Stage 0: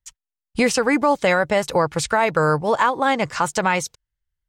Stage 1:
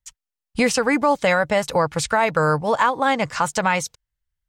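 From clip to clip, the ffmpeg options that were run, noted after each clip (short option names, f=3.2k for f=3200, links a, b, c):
-af "equalizer=f=370:t=o:w=0.29:g=-7.5"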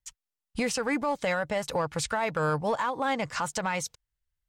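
-filter_complex "[0:a]asplit=2[a][b];[b]volume=15.5dB,asoftclip=hard,volume=-15.5dB,volume=-7dB[c];[a][c]amix=inputs=2:normalize=0,alimiter=limit=-13dB:level=0:latency=1:release=199,volume=-6.5dB"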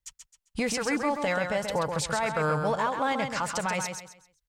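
-af "aecho=1:1:132|264|396|528:0.501|0.15|0.0451|0.0135"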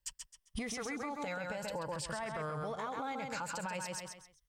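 -af "afftfilt=real='re*pow(10,8/40*sin(2*PI*(1.3*log(max(b,1)*sr/1024/100)/log(2)-(0.52)*(pts-256)/sr)))':imag='im*pow(10,8/40*sin(2*PI*(1.3*log(max(b,1)*sr/1024/100)/log(2)-(0.52)*(pts-256)/sr)))':win_size=1024:overlap=0.75,alimiter=level_in=1.5dB:limit=-24dB:level=0:latency=1:release=183,volume=-1.5dB,acompressor=threshold=-38dB:ratio=6,volume=1.5dB"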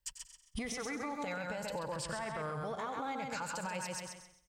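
-af "aecho=1:1:94|188|282|376:0.266|0.0931|0.0326|0.0114"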